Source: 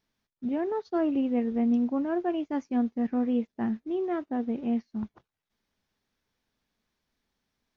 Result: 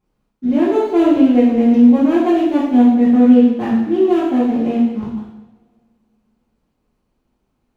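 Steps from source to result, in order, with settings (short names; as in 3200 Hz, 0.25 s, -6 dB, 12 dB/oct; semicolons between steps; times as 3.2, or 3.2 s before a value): median filter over 25 samples; two-slope reverb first 0.93 s, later 2.5 s, from -25 dB, DRR -8.5 dB; gain +6 dB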